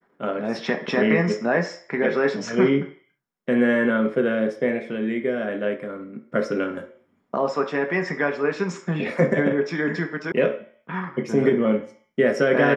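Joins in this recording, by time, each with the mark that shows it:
0:10.32: cut off before it has died away

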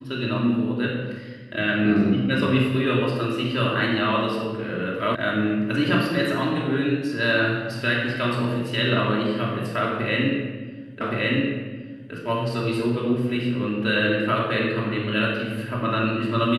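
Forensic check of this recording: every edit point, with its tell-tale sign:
0:05.15: cut off before it has died away
0:11.01: the same again, the last 1.12 s

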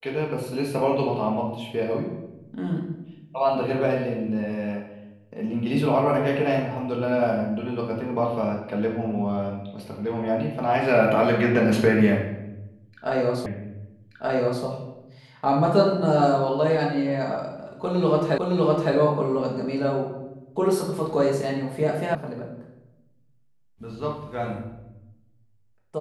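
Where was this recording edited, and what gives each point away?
0:13.46: the same again, the last 1.18 s
0:18.38: the same again, the last 0.56 s
0:22.15: cut off before it has died away

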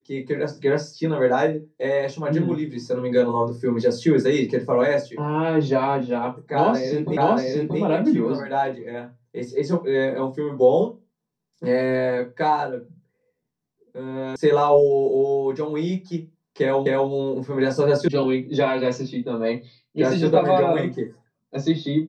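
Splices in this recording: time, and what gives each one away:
0:07.17: the same again, the last 0.63 s
0:14.36: cut off before it has died away
0:16.86: the same again, the last 0.25 s
0:18.08: cut off before it has died away

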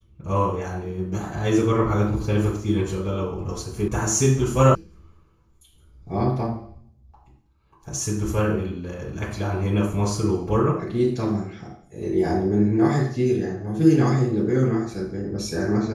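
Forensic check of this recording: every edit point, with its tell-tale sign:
0:03.88: cut off before it has died away
0:04.75: cut off before it has died away

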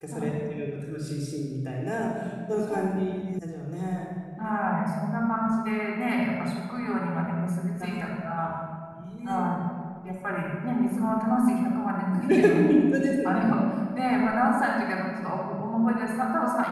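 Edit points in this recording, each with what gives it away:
0:03.39: cut off before it has died away

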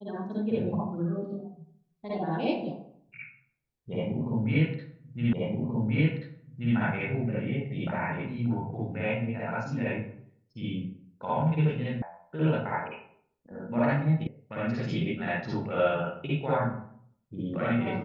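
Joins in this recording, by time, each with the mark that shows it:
0:05.33: the same again, the last 1.43 s
0:12.02: cut off before it has died away
0:14.27: cut off before it has died away

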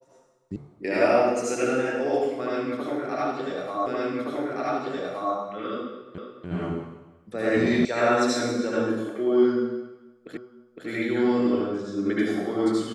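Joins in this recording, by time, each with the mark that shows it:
0:00.56: cut off before it has died away
0:03.86: the same again, the last 1.47 s
0:06.18: the same again, the last 0.29 s
0:07.85: cut off before it has died away
0:10.37: the same again, the last 0.51 s

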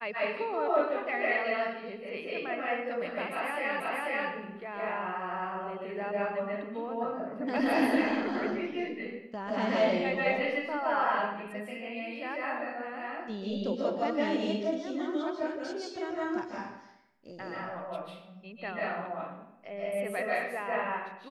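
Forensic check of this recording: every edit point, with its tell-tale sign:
0:03.80: the same again, the last 0.49 s

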